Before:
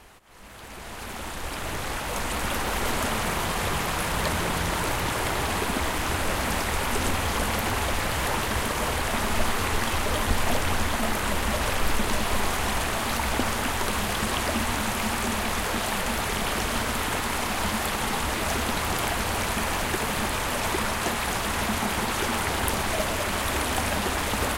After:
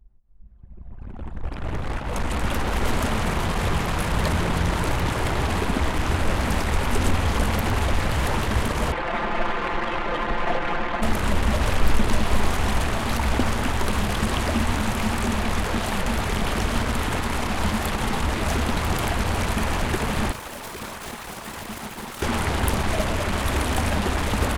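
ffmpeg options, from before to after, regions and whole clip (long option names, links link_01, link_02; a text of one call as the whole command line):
ffmpeg -i in.wav -filter_complex "[0:a]asettb=1/sr,asplit=3[link_01][link_02][link_03];[link_01]atrim=end=8.924[link_04];[link_02]atrim=start=8.92:end=11.02,asetpts=PTS-STARTPTS,afade=type=in:duration=0.004:curve=qsin,afade=type=out:start_time=2.096:duration=0.004:curve=qsin,bass=frequency=250:gain=-13,treble=frequency=4000:gain=-15,aecho=1:1:5.8:0.82,atrim=end_sample=92610[link_05];[link_03]atrim=start=11.016[link_06];[link_04][link_05]acrossfade=duration=0.004:curve1=hsin:curve2=qsin[link_07];[link_07][link_06]acrossfade=duration=0.004:curve1=qsin:curve2=hsin,asettb=1/sr,asplit=3[link_08][link_09][link_10];[link_08]atrim=end=20.324[link_11];[link_09]atrim=start=20.32:end=22.22,asetpts=PTS-STARTPTS,afade=type=in:duration=0.004:curve=qsin,afade=type=out:start_time=1.896:duration=0.004:curve=qsin,highpass=frequency=320:poles=1,highshelf=frequency=8200:gain=6.5,aeval=exprs='0.0501*(abs(mod(val(0)/0.0501+3,4)-2)-1)':channel_layout=same[link_12];[link_10]atrim=start=22.216[link_13];[link_11][link_12]acrossfade=duration=0.004:curve1=hsin:curve2=qsin[link_14];[link_14][link_13]acrossfade=duration=0.004:curve1=qsin:curve2=hsin,lowshelf=frequency=280:gain=8.5,anlmdn=100" out.wav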